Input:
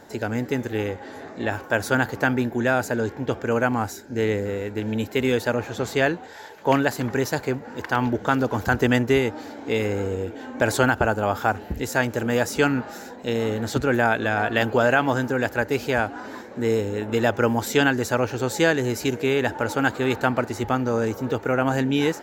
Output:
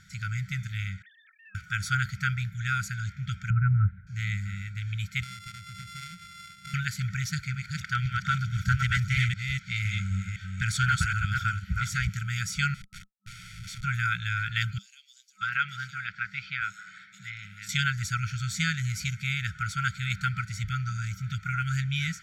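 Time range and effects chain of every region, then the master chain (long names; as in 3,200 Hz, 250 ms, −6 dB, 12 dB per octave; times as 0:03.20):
0:01.02–0:01.55: three sine waves on the formant tracks + high-pass filter 1,000 Hz + downward compressor 3 to 1, threshold −46 dBFS
0:03.50–0:04.07: Gaussian smoothing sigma 5.5 samples + low-shelf EQ 250 Hz +12 dB
0:05.23–0:06.74: samples sorted by size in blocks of 64 samples + downward compressor 4 to 1, threshold −35 dBFS
0:07.29–0:12.18: delay that plays each chunk backwards 256 ms, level −3 dB + highs frequency-modulated by the lows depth 0.14 ms
0:12.74–0:13.84: spectral tilt +2.5 dB per octave + tube saturation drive 33 dB, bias 0.4 + comparator with hysteresis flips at −36 dBFS
0:14.78–0:17.69: three-way crossover with the lows and the highs turned down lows −22 dB, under 200 Hz, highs −13 dB, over 5,300 Hz + multiband delay without the direct sound highs, lows 630 ms, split 4,700 Hz
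whole clip: brick-wall band-stop 200–1,300 Hz; low-pass filter 9,000 Hz 12 dB per octave; comb filter 0.9 ms, depth 63%; level −3 dB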